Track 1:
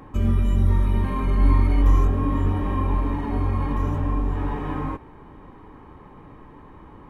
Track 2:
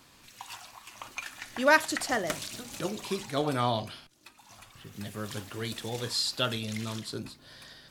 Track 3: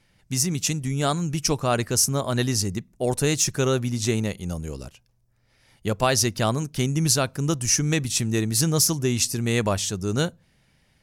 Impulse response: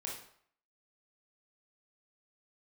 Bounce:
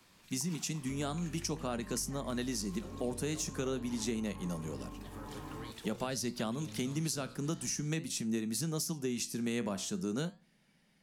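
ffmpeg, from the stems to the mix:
-filter_complex "[0:a]adelay=750,volume=-15dB[a];[1:a]acompressor=threshold=-35dB:ratio=6,volume=-9dB,asplit=2[b][c];[c]volume=-7.5dB[d];[2:a]lowshelf=f=140:t=q:w=3:g=-8,flanger=delay=8.2:depth=8.5:regen=78:speed=0.47:shape=sinusoidal,volume=-2.5dB[e];[a][b]amix=inputs=2:normalize=0,acompressor=threshold=-40dB:ratio=3,volume=0dB[f];[3:a]atrim=start_sample=2205[g];[d][g]afir=irnorm=-1:irlink=0[h];[e][f][h]amix=inputs=3:normalize=0,acrossover=split=100|240[i][j][k];[i]acompressor=threshold=-52dB:ratio=4[l];[j]acompressor=threshold=-40dB:ratio=4[m];[k]acompressor=threshold=-36dB:ratio=4[n];[l][m][n]amix=inputs=3:normalize=0"

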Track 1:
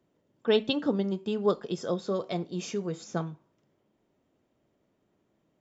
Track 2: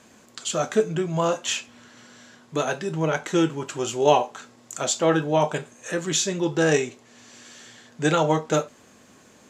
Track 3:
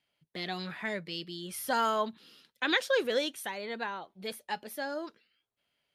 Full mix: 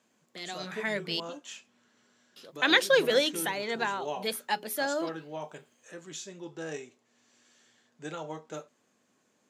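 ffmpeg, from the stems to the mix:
-filter_complex "[0:a]alimiter=limit=-22.5dB:level=0:latency=1,adelay=600,volume=-15.5dB[a];[1:a]volume=-18dB[b];[2:a]dynaudnorm=f=520:g=3:m=11dB,highshelf=f=5.8k:g=5,bandreject=f=60:t=h:w=6,bandreject=f=120:t=h:w=6,bandreject=f=180:t=h:w=6,bandreject=f=240:t=h:w=6,bandreject=f=300:t=h:w=6,bandreject=f=360:t=h:w=6,bandreject=f=420:t=h:w=6,volume=-5.5dB,asplit=3[c][d][e];[c]atrim=end=1.2,asetpts=PTS-STARTPTS,afade=t=out:st=1.196:d=0.004:c=hsin[f];[d]atrim=start=1.2:end=2.36,asetpts=PTS-STARTPTS,volume=0[g];[e]atrim=start=2.36,asetpts=PTS-STARTPTS,afade=t=in:d=0.004:c=hsin[h];[f][g][h]concat=n=3:v=0:a=1,asplit=2[i][j];[j]apad=whole_len=273495[k];[a][k]sidechaingate=range=-33dB:threshold=-57dB:ratio=16:detection=peak[l];[l][b][i]amix=inputs=3:normalize=0,highpass=150"

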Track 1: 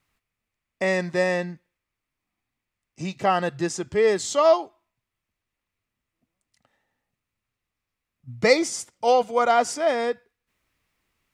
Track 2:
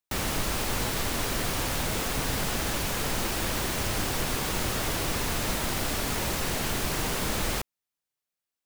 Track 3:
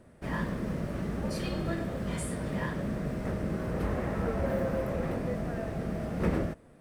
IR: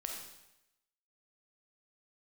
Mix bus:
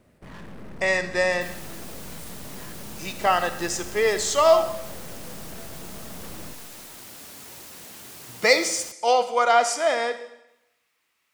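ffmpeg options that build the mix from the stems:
-filter_complex "[0:a]highpass=f=910:p=1,volume=0.5dB,asplit=2[a][b];[b]volume=-3dB[c];[1:a]highpass=120,highshelf=f=4.6k:g=9.5,flanger=delay=2.2:depth=2.2:regen=-70:speed=1.6:shape=triangular,adelay=1300,volume=-12.5dB[d];[2:a]aeval=exprs='(tanh(112*val(0)+0.7)-tanh(0.7))/112':c=same,volume=-2dB,asplit=2[e][f];[f]volume=-7.5dB[g];[3:a]atrim=start_sample=2205[h];[c][g]amix=inputs=2:normalize=0[i];[i][h]afir=irnorm=-1:irlink=0[j];[a][d][e][j]amix=inputs=4:normalize=0"

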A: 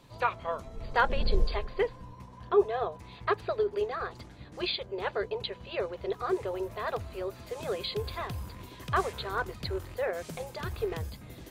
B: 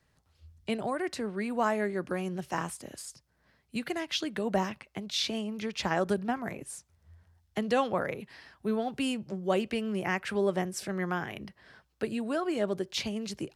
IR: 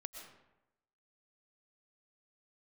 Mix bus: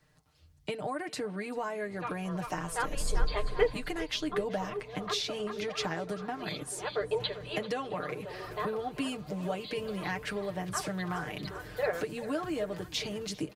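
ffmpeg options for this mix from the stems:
-filter_complex "[0:a]adelay=1800,volume=0.5dB,asplit=2[a][b];[b]volume=-16.5dB[c];[1:a]acompressor=threshold=-34dB:ratio=6,volume=1.5dB,asplit=3[d][e][f];[e]volume=-21.5dB[g];[f]apad=whole_len=586878[h];[a][h]sidechaincompress=threshold=-45dB:ratio=8:attack=16:release=552[i];[c][g]amix=inputs=2:normalize=0,aecho=0:1:392|784|1176|1568|1960|2352:1|0.42|0.176|0.0741|0.0311|0.0131[j];[i][d][j]amix=inputs=3:normalize=0,aecho=1:1:6.6:0.72"

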